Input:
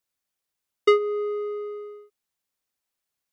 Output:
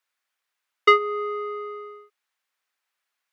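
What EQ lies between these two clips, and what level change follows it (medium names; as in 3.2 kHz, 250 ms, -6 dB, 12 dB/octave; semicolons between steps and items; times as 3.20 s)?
high-pass 470 Hz 6 dB/octave; peaking EQ 1.6 kHz +14 dB 2.8 oct; -3.5 dB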